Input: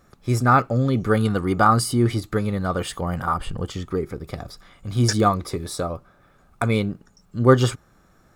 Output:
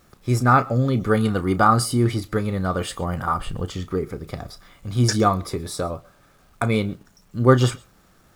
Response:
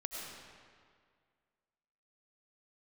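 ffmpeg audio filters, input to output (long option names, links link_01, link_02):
-filter_complex "[0:a]acrusher=bits=9:mix=0:aa=0.000001,asplit=2[link_01][link_02];[1:a]atrim=start_sample=2205,atrim=end_sample=4410,adelay=32[link_03];[link_02][link_03]afir=irnorm=-1:irlink=0,volume=-10.5dB[link_04];[link_01][link_04]amix=inputs=2:normalize=0"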